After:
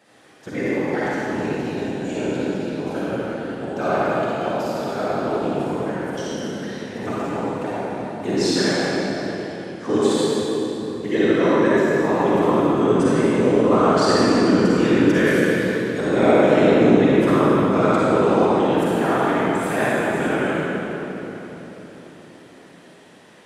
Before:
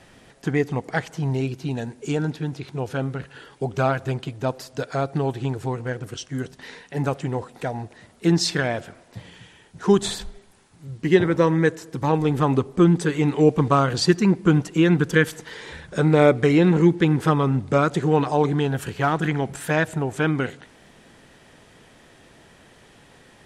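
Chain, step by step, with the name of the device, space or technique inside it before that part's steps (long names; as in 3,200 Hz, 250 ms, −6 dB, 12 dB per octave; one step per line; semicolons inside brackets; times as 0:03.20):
whispering ghost (random phases in short frames; high-pass filter 220 Hz 12 dB per octave; convolution reverb RT60 4.1 s, pre-delay 39 ms, DRR −9.5 dB)
level −6.5 dB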